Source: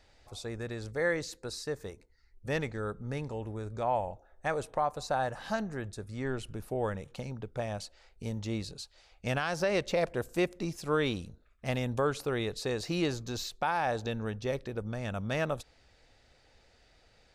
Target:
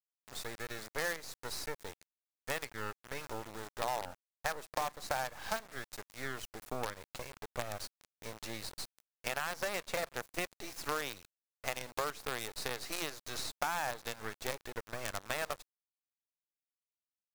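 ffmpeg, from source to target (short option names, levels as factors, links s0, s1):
-af "highpass=740,highshelf=f=3900:g=-6.5,acrusher=bits=6:dc=4:mix=0:aa=0.000001,acompressor=threshold=0.00708:ratio=4,equalizer=f=3000:t=o:w=0.47:g=-3,volume=2.99"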